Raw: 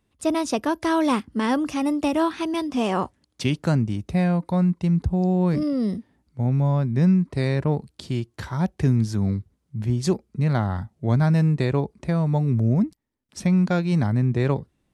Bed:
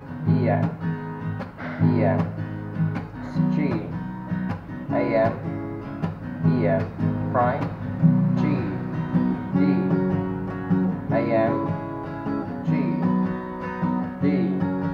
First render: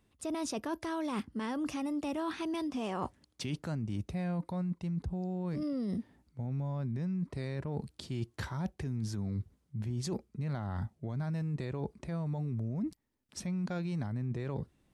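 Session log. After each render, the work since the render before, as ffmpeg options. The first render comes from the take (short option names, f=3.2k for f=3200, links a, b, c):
-af "alimiter=limit=-19.5dB:level=0:latency=1:release=39,areverse,acompressor=threshold=-33dB:ratio=6,areverse"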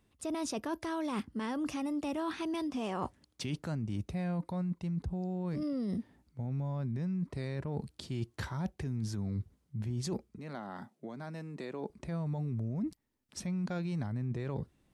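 -filter_complex "[0:a]asettb=1/sr,asplit=3[a][b][c];[a]atrim=end=10.384[d];[b]atrim=start=10.38:end=11.9,asetpts=PTS-STARTPTS,afade=t=in:d=0.004:c=qsin,afade=t=out:st=1.516:d=0.004:c=qsin,highpass=f=210:w=0.5412,highpass=f=210:w=1.3066[e];[c]atrim=start=11.896[f];[d][e]acrossfade=d=0.004:c1=hsin:c2=qsin[g];[g][f]acrossfade=d=0.004:c1=qsin:c2=hsin"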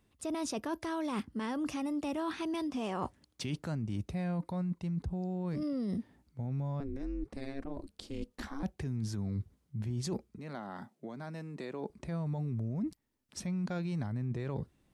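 -filter_complex "[0:a]asettb=1/sr,asplit=3[a][b][c];[a]atrim=end=6.804[d];[b]atrim=start=6.8:end=8.63,asetpts=PTS-STARTPTS,afade=t=in:d=0.004:c=qsin,afade=t=out:st=1.826:d=0.004:c=qsin,aeval=exprs='val(0)*sin(2*PI*140*n/s)':c=same[e];[c]atrim=start=8.626[f];[d][e]acrossfade=d=0.004:c1=hsin:c2=qsin[g];[g][f]acrossfade=d=0.004:c1=qsin:c2=hsin"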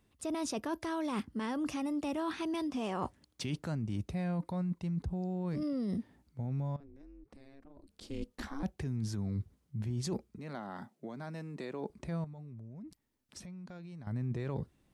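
-filter_complex "[0:a]asettb=1/sr,asplit=3[a][b][c];[a]atrim=end=6.764[d];[b]atrim=start=6.76:end=8.01,asetpts=PTS-STARTPTS,afade=t=in:d=0.004:c=qsin,afade=t=out:st=1.246:d=0.004:c=qsin,acompressor=threshold=-52dB:ratio=6:attack=3.2:release=140:knee=1:detection=peak[e];[c]atrim=start=8.006[f];[d][e]acrossfade=d=0.004:c1=hsin:c2=qsin[g];[g][f]acrossfade=d=0.004:c1=qsin:c2=hsin,asettb=1/sr,asplit=3[h][i][j];[h]atrim=end=12.244[k];[i]atrim=start=12.24:end=14.07,asetpts=PTS-STARTPTS,afade=t=in:d=0.004:c=qsin,afade=t=out:st=1.826:d=0.004:c=qsin,acompressor=threshold=-44dB:ratio=12:attack=3.2:release=140:knee=1:detection=peak[l];[j]atrim=start=14.066[m];[k][l]acrossfade=d=0.004:c1=hsin:c2=qsin[n];[n][m]acrossfade=d=0.004:c1=qsin:c2=hsin"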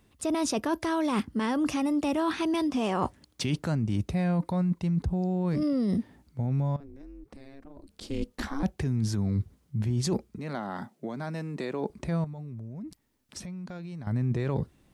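-af "volume=8dB"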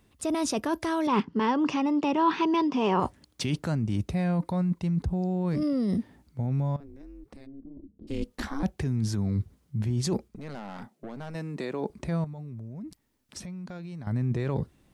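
-filter_complex "[0:a]asettb=1/sr,asplit=3[a][b][c];[a]atrim=end=1.074[d];[b]atrim=start=1.07:end=3,asetpts=PTS-STARTPTS,afade=t=in:d=0.004:c=qsin,afade=t=out:st=1.926:d=0.004:c=qsin,highpass=150,equalizer=f=170:t=q:w=4:g=8,equalizer=f=410:t=q:w=4:g=8,equalizer=f=660:t=q:w=4:g=-3,equalizer=f=960:t=q:w=4:g=10,equalizer=f=2.8k:t=q:w=4:g=4,equalizer=f=4k:t=q:w=4:g=-3,lowpass=f=5.6k:w=0.5412,lowpass=f=5.6k:w=1.3066[e];[c]atrim=start=2.996[f];[d][e]acrossfade=d=0.004:c1=hsin:c2=qsin[g];[g][f]acrossfade=d=0.004:c1=qsin:c2=hsin,asplit=3[h][i][j];[h]afade=t=out:st=7.45:d=0.02[k];[i]lowpass=f=280:t=q:w=2.1,afade=t=in:st=7.45:d=0.02,afade=t=out:st=8.07:d=0.02[l];[j]afade=t=in:st=8.07:d=0.02[m];[k][l][m]amix=inputs=3:normalize=0,asettb=1/sr,asplit=3[n][o][p];[n]atrim=end=10.284[q];[o]atrim=start=10.28:end=11.35,asetpts=PTS-STARTPTS,afade=t=in:d=0.004:c=qsin,afade=t=out:st=1.066:d=0.004:c=qsin,aeval=exprs='(tanh(50.1*val(0)+0.6)-tanh(0.6))/50.1':c=same[r];[p]atrim=start=11.346[s];[q][r]acrossfade=d=0.004:c1=hsin:c2=qsin[t];[t][s]acrossfade=d=0.004:c1=qsin:c2=hsin"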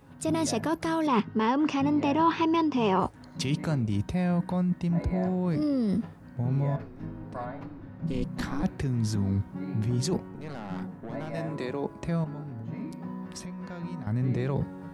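-filter_complex "[1:a]volume=-16dB[a];[0:a][a]amix=inputs=2:normalize=0"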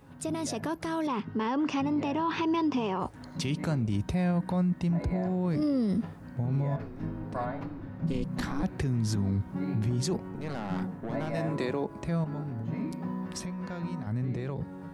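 -af "alimiter=level_in=0.5dB:limit=-24dB:level=0:latency=1:release=107,volume=-0.5dB,dynaudnorm=f=300:g=9:m=3dB"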